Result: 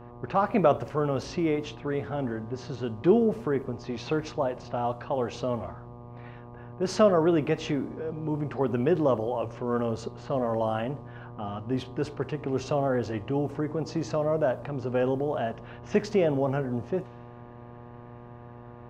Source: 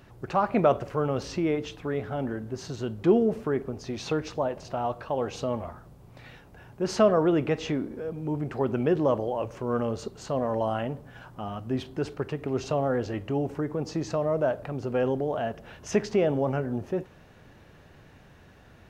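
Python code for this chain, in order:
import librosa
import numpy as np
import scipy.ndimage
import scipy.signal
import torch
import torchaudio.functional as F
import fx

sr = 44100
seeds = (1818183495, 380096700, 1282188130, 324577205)

y = fx.env_lowpass(x, sr, base_hz=1800.0, full_db=-23.5)
y = fx.dmg_buzz(y, sr, base_hz=120.0, harmonics=10, level_db=-46.0, tilt_db=-4, odd_only=False)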